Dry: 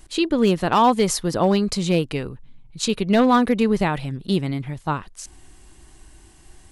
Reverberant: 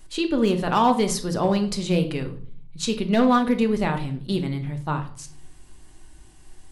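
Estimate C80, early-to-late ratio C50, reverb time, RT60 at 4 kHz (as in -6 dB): 16.5 dB, 12.0 dB, 0.50 s, 0.40 s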